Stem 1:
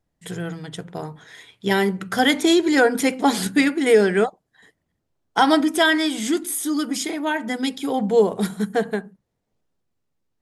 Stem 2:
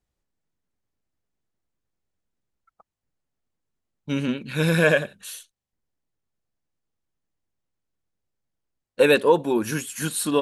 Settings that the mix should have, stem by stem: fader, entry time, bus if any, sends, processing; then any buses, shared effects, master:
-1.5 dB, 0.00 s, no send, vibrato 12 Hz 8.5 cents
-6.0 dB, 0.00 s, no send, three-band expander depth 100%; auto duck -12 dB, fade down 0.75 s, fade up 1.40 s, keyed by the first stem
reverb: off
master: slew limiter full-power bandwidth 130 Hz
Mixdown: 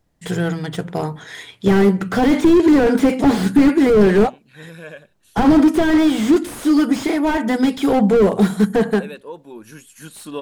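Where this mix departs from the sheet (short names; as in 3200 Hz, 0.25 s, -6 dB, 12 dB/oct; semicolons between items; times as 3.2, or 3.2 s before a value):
stem 1 -1.5 dB -> +9.0 dB; stem 2: missing three-band expander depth 100%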